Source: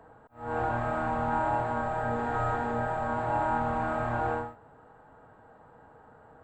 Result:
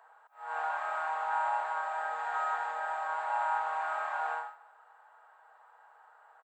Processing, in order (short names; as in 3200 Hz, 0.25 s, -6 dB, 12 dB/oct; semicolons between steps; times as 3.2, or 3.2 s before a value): HPF 820 Hz 24 dB/oct; feedback echo 0.147 s, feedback 38%, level -21 dB